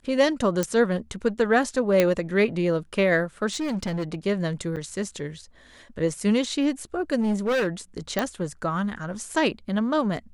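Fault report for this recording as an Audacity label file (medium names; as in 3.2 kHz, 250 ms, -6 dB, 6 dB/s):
0.630000	0.630000	pop -11 dBFS
2.000000	2.000000	pop -6 dBFS
3.520000	4.150000	clipped -24 dBFS
4.760000	4.770000	dropout 7.2 ms
7.200000	7.670000	clipped -20.5 dBFS
8.190000	8.190000	pop -10 dBFS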